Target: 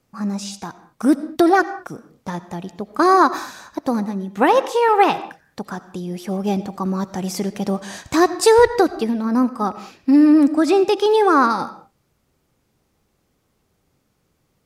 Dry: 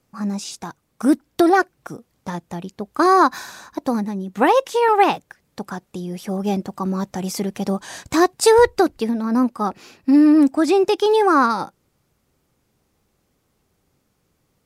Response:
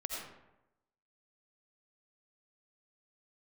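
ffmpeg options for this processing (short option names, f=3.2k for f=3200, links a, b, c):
-filter_complex "[0:a]asplit=2[a][b];[1:a]atrim=start_sample=2205,afade=t=out:st=0.28:d=0.01,atrim=end_sample=12789,lowpass=8k[c];[b][c]afir=irnorm=-1:irlink=0,volume=-11.5dB[d];[a][d]amix=inputs=2:normalize=0,volume=-1dB"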